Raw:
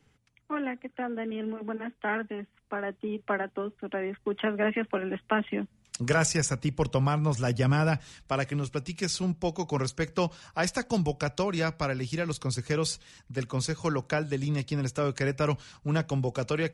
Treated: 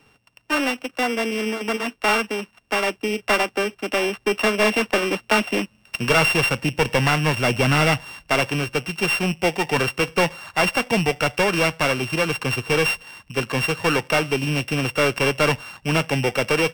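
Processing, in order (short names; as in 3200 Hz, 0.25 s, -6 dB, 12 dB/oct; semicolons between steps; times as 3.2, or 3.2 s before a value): sample sorter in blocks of 16 samples; overdrive pedal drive 16 dB, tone 3100 Hz, clips at -12.5 dBFS; gain +5.5 dB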